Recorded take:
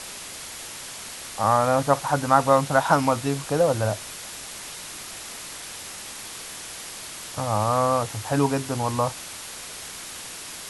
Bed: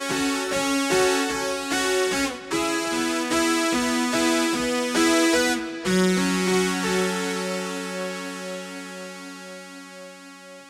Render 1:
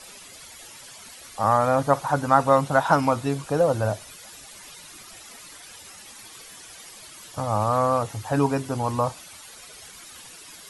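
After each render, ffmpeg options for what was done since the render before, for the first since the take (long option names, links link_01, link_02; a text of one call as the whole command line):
ffmpeg -i in.wav -af "afftdn=noise_reduction=12:noise_floor=-38" out.wav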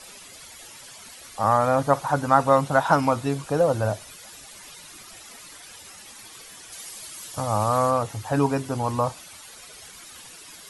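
ffmpeg -i in.wav -filter_complex "[0:a]asettb=1/sr,asplit=3[link_01][link_02][link_03];[link_01]atrim=end=6.724[link_04];[link_02]atrim=start=6.72:end=7.91,asetpts=PTS-STARTPTS,afade=type=in:duration=0.004:curve=qsin,afade=type=out:start_time=1.186:duration=0.004:curve=qsin,highshelf=frequency=4700:gain=7.5[link_05];[link_03]atrim=start=7.906[link_06];[link_04][link_05]acrossfade=duration=0.004:curve1=hsin:curve2=qsin[link_07];[link_07][link_06]acrossfade=duration=0.004:curve1=qsin:curve2=hsin" out.wav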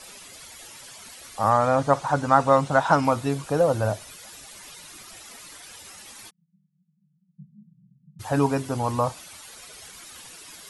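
ffmpeg -i in.wav -filter_complex "[0:a]asettb=1/sr,asplit=3[link_01][link_02][link_03];[link_01]atrim=end=1.504[link_04];[link_02]atrim=start=1.5:end=3.05,asetpts=PTS-STARTPTS,afade=type=in:duration=0.004:curve=qsin,afade=type=out:start_time=1.546:duration=0.004:curve=qsin,lowpass=frequency=9000:width=0.5412,lowpass=frequency=9000:width=1.3066[link_05];[link_03]atrim=start=3.046[link_06];[link_04][link_05]acrossfade=duration=0.004:curve1=hsin:curve2=qsin[link_07];[link_07][link_06]acrossfade=duration=0.004:curve1=qsin:curve2=hsin,asplit=3[link_08][link_09][link_10];[link_08]afade=type=out:start_time=6.29:duration=0.02[link_11];[link_09]asuperpass=centerf=170:order=12:qfactor=3.1,afade=type=in:start_time=6.29:duration=0.02,afade=type=out:start_time=8.19:duration=0.02[link_12];[link_10]afade=type=in:start_time=8.19:duration=0.02[link_13];[link_11][link_12][link_13]amix=inputs=3:normalize=0" out.wav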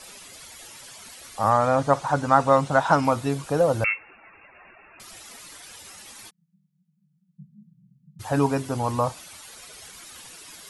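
ffmpeg -i in.wav -filter_complex "[0:a]asettb=1/sr,asplit=3[link_01][link_02][link_03];[link_01]atrim=end=3.844[link_04];[link_02]atrim=start=3.84:end=5,asetpts=PTS-STARTPTS,afade=type=in:duration=0.004:curve=qsin,afade=type=out:start_time=1.156:duration=0.004:curve=qsin,lowpass=frequency=2400:width_type=q:width=0.5098,lowpass=frequency=2400:width_type=q:width=0.6013,lowpass=frequency=2400:width_type=q:width=0.9,lowpass=frequency=2400:width_type=q:width=2.563,afreqshift=-2800[link_05];[link_03]atrim=start=4.996[link_06];[link_04][link_05]acrossfade=duration=0.004:curve1=hsin:curve2=qsin[link_07];[link_07][link_06]acrossfade=duration=0.004:curve1=qsin:curve2=hsin" out.wav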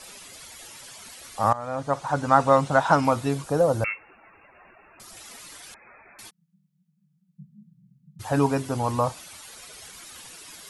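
ffmpeg -i in.wav -filter_complex "[0:a]asettb=1/sr,asplit=3[link_01][link_02][link_03];[link_01]atrim=end=3.434[link_04];[link_02]atrim=start=3.43:end=5.17,asetpts=PTS-STARTPTS,afade=type=in:duration=0.004:curve=qsin,afade=type=out:start_time=1.736:duration=0.004:curve=qsin,equalizer=frequency=2600:width_type=o:width=1.3:gain=-6[link_05];[link_03]atrim=start=5.166[link_06];[link_04][link_05]acrossfade=duration=0.004:curve1=hsin:curve2=qsin[link_07];[link_07][link_06]acrossfade=duration=0.004:curve1=qsin:curve2=hsin,asettb=1/sr,asplit=3[link_08][link_09][link_10];[link_08]atrim=end=5.744[link_11];[link_09]atrim=start=5.74:end=6.19,asetpts=PTS-STARTPTS,afade=type=in:duration=0.004:curve=qsin,afade=type=out:start_time=0.446:duration=0.004:curve=qsin,lowpass=frequency=2200:width_type=q:width=0.5098,lowpass=frequency=2200:width_type=q:width=0.6013,lowpass=frequency=2200:width_type=q:width=0.9,lowpass=frequency=2200:width_type=q:width=2.563,afreqshift=-2600[link_12];[link_10]atrim=start=6.186[link_13];[link_11][link_12]acrossfade=duration=0.004:curve1=hsin:curve2=qsin[link_14];[link_14][link_13]acrossfade=duration=0.004:curve1=qsin:curve2=hsin,asplit=2[link_15][link_16];[link_15]atrim=end=1.53,asetpts=PTS-STARTPTS,afade=type=out:start_time=1.526:duration=0.004:curve=hsin:silence=0.125893[link_17];[link_16]atrim=start=1.53,asetpts=PTS-STARTPTS,afade=type=in:duration=0.82:silence=0.125893[link_18];[link_17][link_18]concat=n=2:v=0:a=1" out.wav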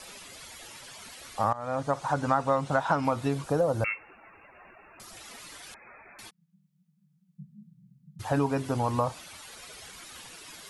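ffmpeg -i in.wav -filter_complex "[0:a]acrossover=split=4700[link_01][link_02];[link_02]alimiter=level_in=17.5dB:limit=-24dB:level=0:latency=1:release=454,volume=-17.5dB[link_03];[link_01][link_03]amix=inputs=2:normalize=0,acompressor=threshold=-23dB:ratio=3" out.wav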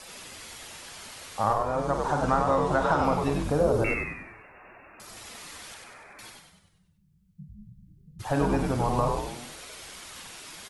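ffmpeg -i in.wav -filter_complex "[0:a]asplit=2[link_01][link_02];[link_02]adelay=48,volume=-9dB[link_03];[link_01][link_03]amix=inputs=2:normalize=0,asplit=2[link_04][link_05];[link_05]asplit=7[link_06][link_07][link_08][link_09][link_10][link_11][link_12];[link_06]adelay=97,afreqshift=-91,volume=-3.5dB[link_13];[link_07]adelay=194,afreqshift=-182,volume=-9.3dB[link_14];[link_08]adelay=291,afreqshift=-273,volume=-15.2dB[link_15];[link_09]adelay=388,afreqshift=-364,volume=-21dB[link_16];[link_10]adelay=485,afreqshift=-455,volume=-26.9dB[link_17];[link_11]adelay=582,afreqshift=-546,volume=-32.7dB[link_18];[link_12]adelay=679,afreqshift=-637,volume=-38.6dB[link_19];[link_13][link_14][link_15][link_16][link_17][link_18][link_19]amix=inputs=7:normalize=0[link_20];[link_04][link_20]amix=inputs=2:normalize=0" out.wav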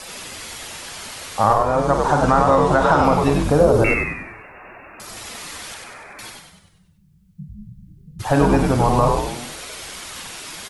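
ffmpeg -i in.wav -af "volume=9.5dB,alimiter=limit=-3dB:level=0:latency=1" out.wav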